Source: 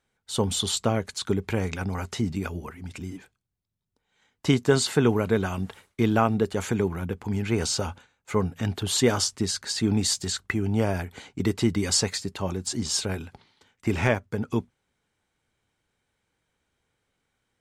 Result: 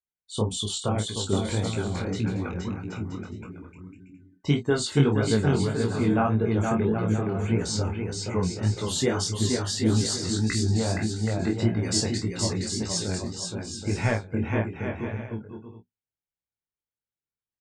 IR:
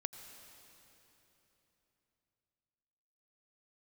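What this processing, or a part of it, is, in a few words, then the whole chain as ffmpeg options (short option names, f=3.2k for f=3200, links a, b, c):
double-tracked vocal: -filter_complex "[0:a]afftdn=nr=26:nf=-38,lowshelf=f=200:g=4,asplit=2[a][b];[b]adelay=28,volume=-8dB[c];[a][c]amix=inputs=2:normalize=0,aecho=1:1:470|775.5|974.1|1103|1187:0.631|0.398|0.251|0.158|0.1,flanger=delay=17:depth=5.4:speed=1.7,volume=-1dB"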